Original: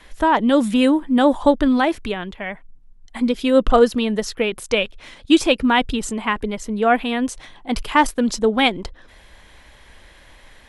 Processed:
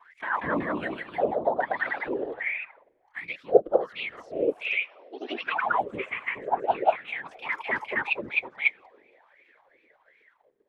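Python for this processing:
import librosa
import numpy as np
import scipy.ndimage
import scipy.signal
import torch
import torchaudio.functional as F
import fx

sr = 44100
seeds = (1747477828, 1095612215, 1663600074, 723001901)

p1 = x + fx.echo_thinned(x, sr, ms=94, feedback_pct=80, hz=270.0, wet_db=-22, dry=0)
p2 = fx.wah_lfo(p1, sr, hz=1.3, low_hz=380.0, high_hz=2300.0, q=17.0)
p3 = fx.whisperise(p2, sr, seeds[0])
p4 = fx.level_steps(p3, sr, step_db=23)
p5 = p3 + F.gain(torch.from_numpy(p4), 3.0).numpy()
p6 = fx.brickwall_bandpass(p5, sr, low_hz=210.0, high_hz=5700.0, at=(4.73, 5.57))
p7 = fx.echo_pitch(p6, sr, ms=200, semitones=1, count=2, db_per_echo=-3.0)
y = fx.rider(p7, sr, range_db=4, speed_s=0.5)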